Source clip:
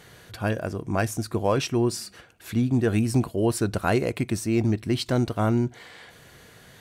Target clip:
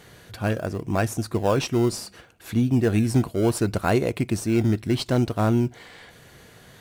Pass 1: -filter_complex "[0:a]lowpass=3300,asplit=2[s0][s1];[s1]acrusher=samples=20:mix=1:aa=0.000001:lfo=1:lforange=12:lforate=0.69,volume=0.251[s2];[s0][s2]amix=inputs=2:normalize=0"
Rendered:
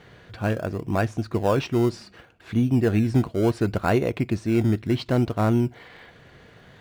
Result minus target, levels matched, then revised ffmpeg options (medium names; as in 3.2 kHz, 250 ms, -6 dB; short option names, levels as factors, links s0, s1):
4 kHz band -4.0 dB
-filter_complex "[0:a]asplit=2[s0][s1];[s1]acrusher=samples=20:mix=1:aa=0.000001:lfo=1:lforange=12:lforate=0.69,volume=0.251[s2];[s0][s2]amix=inputs=2:normalize=0"